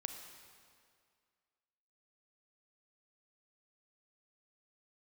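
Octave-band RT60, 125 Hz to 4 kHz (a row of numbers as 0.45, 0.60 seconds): 1.9, 2.0, 2.1, 2.1, 2.0, 1.8 seconds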